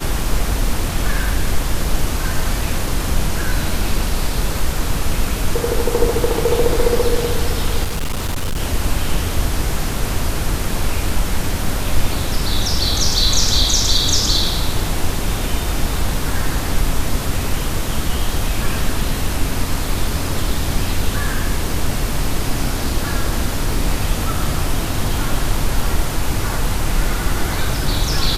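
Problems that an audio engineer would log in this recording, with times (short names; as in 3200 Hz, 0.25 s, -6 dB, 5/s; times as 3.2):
7.83–8.6 clipped -16.5 dBFS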